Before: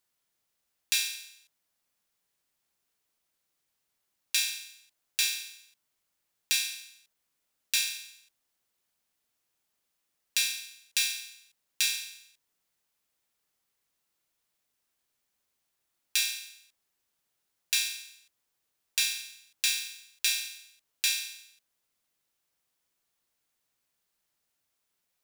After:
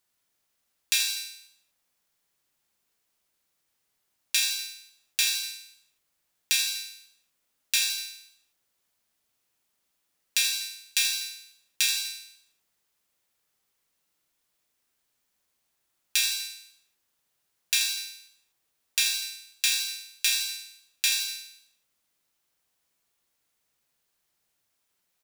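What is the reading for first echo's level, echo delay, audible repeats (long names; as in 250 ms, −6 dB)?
−7.5 dB, 81 ms, 3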